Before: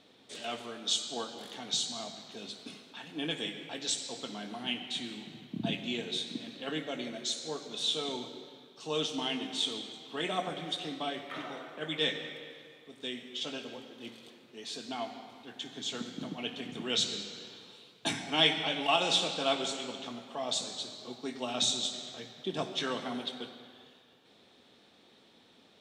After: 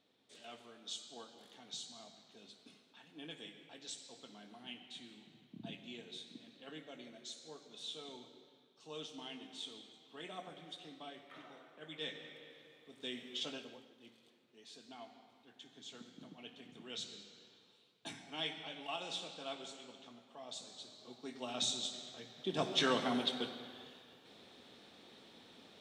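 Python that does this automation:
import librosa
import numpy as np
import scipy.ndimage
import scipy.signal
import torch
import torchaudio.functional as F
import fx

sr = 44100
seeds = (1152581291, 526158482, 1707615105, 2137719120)

y = fx.gain(x, sr, db=fx.line((11.81, -14.5), (13.37, -3.0), (13.99, -15.0), (20.52, -15.0), (21.51, -7.0), (22.24, -7.0), (22.81, 2.0)))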